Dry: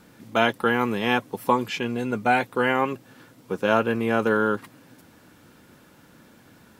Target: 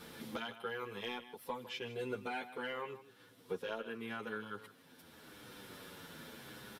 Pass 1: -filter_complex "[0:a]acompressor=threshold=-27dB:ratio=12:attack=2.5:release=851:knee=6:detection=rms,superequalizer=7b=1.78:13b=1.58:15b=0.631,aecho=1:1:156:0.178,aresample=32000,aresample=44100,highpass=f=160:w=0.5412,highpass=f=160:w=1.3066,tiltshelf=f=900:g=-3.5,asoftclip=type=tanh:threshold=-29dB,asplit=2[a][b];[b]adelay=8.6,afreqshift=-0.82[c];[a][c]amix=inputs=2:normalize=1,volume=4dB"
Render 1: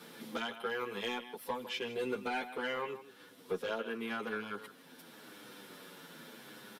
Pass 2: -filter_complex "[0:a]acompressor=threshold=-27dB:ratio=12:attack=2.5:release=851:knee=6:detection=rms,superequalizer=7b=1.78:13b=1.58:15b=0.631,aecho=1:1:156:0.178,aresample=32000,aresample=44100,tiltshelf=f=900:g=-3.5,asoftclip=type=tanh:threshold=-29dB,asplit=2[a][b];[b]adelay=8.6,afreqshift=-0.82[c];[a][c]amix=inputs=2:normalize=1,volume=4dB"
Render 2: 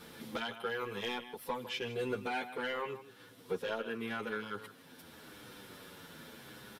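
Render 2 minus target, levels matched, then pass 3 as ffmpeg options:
compressor: peak gain reduction -5.5 dB
-filter_complex "[0:a]acompressor=threshold=-33dB:ratio=12:attack=2.5:release=851:knee=6:detection=rms,superequalizer=7b=1.78:13b=1.58:15b=0.631,aecho=1:1:156:0.178,aresample=32000,aresample=44100,tiltshelf=f=900:g=-3.5,asoftclip=type=tanh:threshold=-29dB,asplit=2[a][b];[b]adelay=8.6,afreqshift=-0.82[c];[a][c]amix=inputs=2:normalize=1,volume=4dB"

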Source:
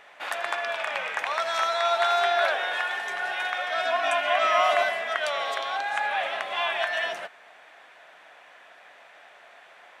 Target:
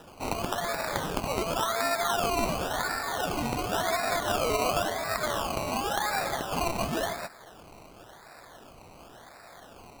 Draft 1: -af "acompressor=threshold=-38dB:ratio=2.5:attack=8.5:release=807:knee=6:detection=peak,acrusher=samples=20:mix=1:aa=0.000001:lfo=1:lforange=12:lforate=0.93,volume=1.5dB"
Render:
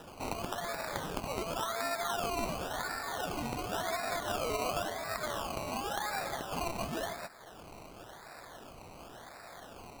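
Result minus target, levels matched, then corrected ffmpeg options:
compressor: peak gain reduction +7 dB
-af "acompressor=threshold=-26.5dB:ratio=2.5:attack=8.5:release=807:knee=6:detection=peak,acrusher=samples=20:mix=1:aa=0.000001:lfo=1:lforange=12:lforate=0.93,volume=1.5dB"

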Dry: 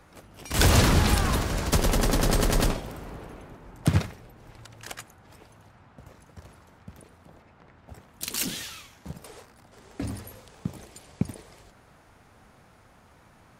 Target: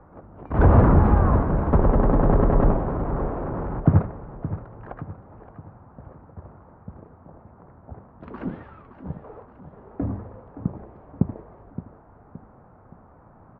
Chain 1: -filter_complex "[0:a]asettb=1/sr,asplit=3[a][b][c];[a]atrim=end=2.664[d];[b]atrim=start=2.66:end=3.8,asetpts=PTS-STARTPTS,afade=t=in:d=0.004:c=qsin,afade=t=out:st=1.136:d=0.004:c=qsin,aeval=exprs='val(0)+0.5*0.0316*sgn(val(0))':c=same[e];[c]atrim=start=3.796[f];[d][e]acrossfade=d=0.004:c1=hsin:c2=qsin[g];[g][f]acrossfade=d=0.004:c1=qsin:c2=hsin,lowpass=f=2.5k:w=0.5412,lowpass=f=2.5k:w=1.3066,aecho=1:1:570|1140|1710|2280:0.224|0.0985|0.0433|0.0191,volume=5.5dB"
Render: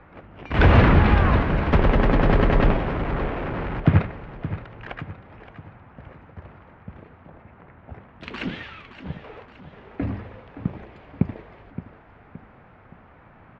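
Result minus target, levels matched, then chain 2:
2000 Hz band +11.0 dB
-filter_complex "[0:a]asettb=1/sr,asplit=3[a][b][c];[a]atrim=end=2.664[d];[b]atrim=start=2.66:end=3.8,asetpts=PTS-STARTPTS,afade=t=in:d=0.004:c=qsin,afade=t=out:st=1.136:d=0.004:c=qsin,aeval=exprs='val(0)+0.5*0.0316*sgn(val(0))':c=same[e];[c]atrim=start=3.796[f];[d][e]acrossfade=d=0.004:c1=hsin:c2=qsin[g];[g][f]acrossfade=d=0.004:c1=qsin:c2=hsin,lowpass=f=1.2k:w=0.5412,lowpass=f=1.2k:w=1.3066,aecho=1:1:570|1140|1710|2280:0.224|0.0985|0.0433|0.0191,volume=5.5dB"

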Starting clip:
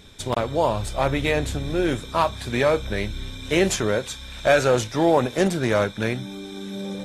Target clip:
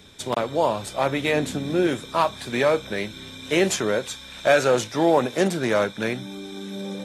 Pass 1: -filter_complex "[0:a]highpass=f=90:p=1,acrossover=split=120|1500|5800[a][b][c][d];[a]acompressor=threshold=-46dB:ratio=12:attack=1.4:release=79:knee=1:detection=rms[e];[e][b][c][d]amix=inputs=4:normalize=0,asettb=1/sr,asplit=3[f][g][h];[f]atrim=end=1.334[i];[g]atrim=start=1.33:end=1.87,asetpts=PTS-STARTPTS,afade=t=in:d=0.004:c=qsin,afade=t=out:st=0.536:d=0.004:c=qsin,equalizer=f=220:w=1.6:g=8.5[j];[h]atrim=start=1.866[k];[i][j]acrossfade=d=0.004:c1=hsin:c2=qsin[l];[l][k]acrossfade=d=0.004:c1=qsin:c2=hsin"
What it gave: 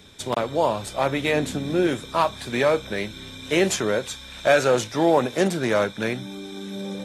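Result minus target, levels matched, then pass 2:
compressor: peak gain reduction -6.5 dB
-filter_complex "[0:a]highpass=f=90:p=1,acrossover=split=120|1500|5800[a][b][c][d];[a]acompressor=threshold=-53dB:ratio=12:attack=1.4:release=79:knee=1:detection=rms[e];[e][b][c][d]amix=inputs=4:normalize=0,asettb=1/sr,asplit=3[f][g][h];[f]atrim=end=1.334[i];[g]atrim=start=1.33:end=1.87,asetpts=PTS-STARTPTS,afade=t=in:d=0.004:c=qsin,afade=t=out:st=0.536:d=0.004:c=qsin,equalizer=f=220:w=1.6:g=8.5[j];[h]atrim=start=1.866[k];[i][j]acrossfade=d=0.004:c1=hsin:c2=qsin[l];[l][k]acrossfade=d=0.004:c1=qsin:c2=hsin"

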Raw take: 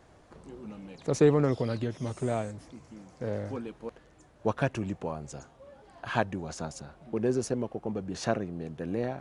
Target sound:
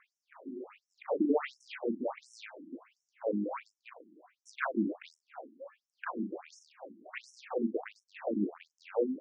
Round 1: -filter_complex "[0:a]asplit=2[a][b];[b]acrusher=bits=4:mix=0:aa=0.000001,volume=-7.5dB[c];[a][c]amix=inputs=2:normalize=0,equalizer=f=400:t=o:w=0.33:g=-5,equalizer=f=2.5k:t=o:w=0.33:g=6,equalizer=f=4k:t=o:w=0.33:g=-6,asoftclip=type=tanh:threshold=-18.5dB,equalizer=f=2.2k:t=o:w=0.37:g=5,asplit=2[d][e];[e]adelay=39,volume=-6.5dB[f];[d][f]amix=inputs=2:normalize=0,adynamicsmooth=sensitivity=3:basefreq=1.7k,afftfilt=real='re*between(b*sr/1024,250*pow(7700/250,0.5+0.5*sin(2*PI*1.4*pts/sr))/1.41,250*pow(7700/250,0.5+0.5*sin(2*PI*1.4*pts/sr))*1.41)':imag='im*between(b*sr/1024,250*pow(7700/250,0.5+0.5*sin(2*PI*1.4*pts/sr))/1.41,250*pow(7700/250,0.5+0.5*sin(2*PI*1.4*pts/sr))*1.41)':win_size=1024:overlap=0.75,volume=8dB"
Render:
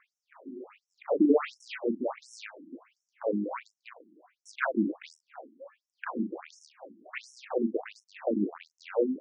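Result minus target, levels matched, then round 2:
soft clip: distortion -6 dB
-filter_complex "[0:a]asplit=2[a][b];[b]acrusher=bits=4:mix=0:aa=0.000001,volume=-7.5dB[c];[a][c]amix=inputs=2:normalize=0,equalizer=f=400:t=o:w=0.33:g=-5,equalizer=f=2.5k:t=o:w=0.33:g=6,equalizer=f=4k:t=o:w=0.33:g=-6,asoftclip=type=tanh:threshold=-27dB,equalizer=f=2.2k:t=o:w=0.37:g=5,asplit=2[d][e];[e]adelay=39,volume=-6.5dB[f];[d][f]amix=inputs=2:normalize=0,adynamicsmooth=sensitivity=3:basefreq=1.7k,afftfilt=real='re*between(b*sr/1024,250*pow(7700/250,0.5+0.5*sin(2*PI*1.4*pts/sr))/1.41,250*pow(7700/250,0.5+0.5*sin(2*PI*1.4*pts/sr))*1.41)':imag='im*between(b*sr/1024,250*pow(7700/250,0.5+0.5*sin(2*PI*1.4*pts/sr))/1.41,250*pow(7700/250,0.5+0.5*sin(2*PI*1.4*pts/sr))*1.41)':win_size=1024:overlap=0.75,volume=8dB"

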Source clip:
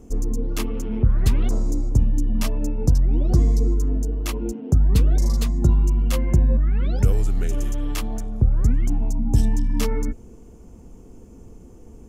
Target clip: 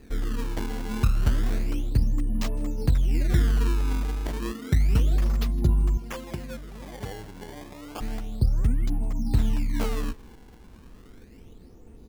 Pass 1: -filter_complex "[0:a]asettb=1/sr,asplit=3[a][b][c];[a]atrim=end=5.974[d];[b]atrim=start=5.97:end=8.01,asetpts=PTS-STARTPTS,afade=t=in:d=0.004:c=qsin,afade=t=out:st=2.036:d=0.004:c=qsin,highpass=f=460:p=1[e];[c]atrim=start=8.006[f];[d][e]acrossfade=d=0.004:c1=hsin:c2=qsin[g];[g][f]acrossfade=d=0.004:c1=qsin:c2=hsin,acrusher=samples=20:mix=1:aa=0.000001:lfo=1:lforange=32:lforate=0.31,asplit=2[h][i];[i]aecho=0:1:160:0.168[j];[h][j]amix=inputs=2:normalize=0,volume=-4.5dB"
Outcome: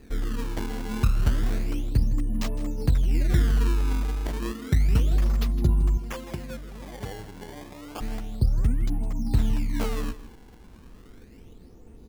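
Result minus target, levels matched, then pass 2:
echo-to-direct +8 dB
-filter_complex "[0:a]asettb=1/sr,asplit=3[a][b][c];[a]atrim=end=5.974[d];[b]atrim=start=5.97:end=8.01,asetpts=PTS-STARTPTS,afade=t=in:d=0.004:c=qsin,afade=t=out:st=2.036:d=0.004:c=qsin,highpass=f=460:p=1[e];[c]atrim=start=8.006[f];[d][e]acrossfade=d=0.004:c1=hsin:c2=qsin[g];[g][f]acrossfade=d=0.004:c1=qsin:c2=hsin,acrusher=samples=20:mix=1:aa=0.000001:lfo=1:lforange=32:lforate=0.31,asplit=2[h][i];[i]aecho=0:1:160:0.0668[j];[h][j]amix=inputs=2:normalize=0,volume=-4.5dB"

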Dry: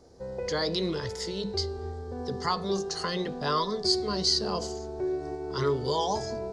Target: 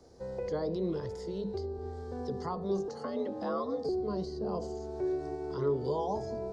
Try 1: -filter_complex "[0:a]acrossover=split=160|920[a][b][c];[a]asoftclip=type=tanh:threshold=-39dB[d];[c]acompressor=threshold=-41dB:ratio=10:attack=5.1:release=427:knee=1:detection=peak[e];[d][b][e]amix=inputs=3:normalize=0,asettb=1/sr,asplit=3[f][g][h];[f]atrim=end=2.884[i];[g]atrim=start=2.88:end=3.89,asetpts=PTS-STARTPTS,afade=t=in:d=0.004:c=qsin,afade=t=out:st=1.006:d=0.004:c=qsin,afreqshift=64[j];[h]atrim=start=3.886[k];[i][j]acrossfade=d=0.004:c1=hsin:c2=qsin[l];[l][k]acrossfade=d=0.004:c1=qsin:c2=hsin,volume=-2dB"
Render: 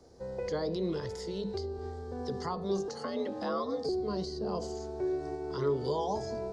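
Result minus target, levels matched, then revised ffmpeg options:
compressor: peak gain reduction -7.5 dB
-filter_complex "[0:a]acrossover=split=160|920[a][b][c];[a]asoftclip=type=tanh:threshold=-39dB[d];[c]acompressor=threshold=-49.5dB:ratio=10:attack=5.1:release=427:knee=1:detection=peak[e];[d][b][e]amix=inputs=3:normalize=0,asettb=1/sr,asplit=3[f][g][h];[f]atrim=end=2.884[i];[g]atrim=start=2.88:end=3.89,asetpts=PTS-STARTPTS,afade=t=in:d=0.004:c=qsin,afade=t=out:st=1.006:d=0.004:c=qsin,afreqshift=64[j];[h]atrim=start=3.886[k];[i][j]acrossfade=d=0.004:c1=hsin:c2=qsin[l];[l][k]acrossfade=d=0.004:c1=qsin:c2=hsin,volume=-2dB"

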